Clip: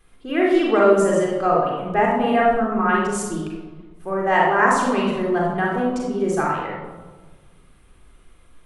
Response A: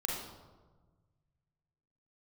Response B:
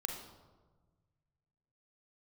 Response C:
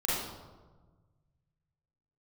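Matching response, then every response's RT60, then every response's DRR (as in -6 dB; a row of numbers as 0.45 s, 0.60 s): A; 1.4 s, 1.4 s, 1.4 s; -2.5 dB, 2.5 dB, -8.0 dB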